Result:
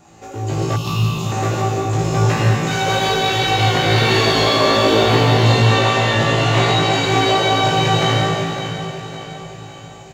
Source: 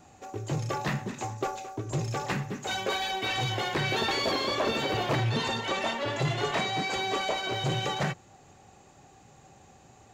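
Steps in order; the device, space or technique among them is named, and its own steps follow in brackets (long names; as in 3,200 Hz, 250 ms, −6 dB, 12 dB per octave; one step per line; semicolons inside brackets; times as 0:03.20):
tunnel (flutter between parallel walls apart 3.1 metres, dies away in 0.32 s; convolution reverb RT60 2.7 s, pre-delay 66 ms, DRR −4 dB)
0:00.76–0:01.32: drawn EQ curve 170 Hz 0 dB, 510 Hz −15 dB, 1,200 Hz −3 dB, 1,800 Hz −29 dB, 2,700 Hz +4 dB, 7,800 Hz −4 dB, 11,000 Hz +5 dB
repeating echo 559 ms, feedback 49%, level −11 dB
level +5 dB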